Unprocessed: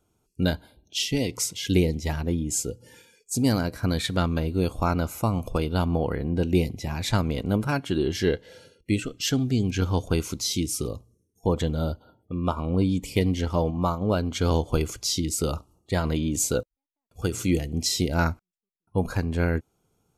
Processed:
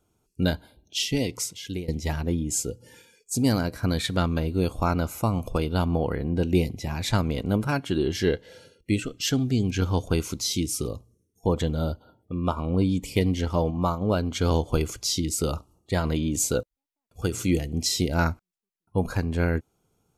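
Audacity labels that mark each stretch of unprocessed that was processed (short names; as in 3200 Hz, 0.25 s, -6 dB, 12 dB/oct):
1.220000	1.880000	fade out, to -18 dB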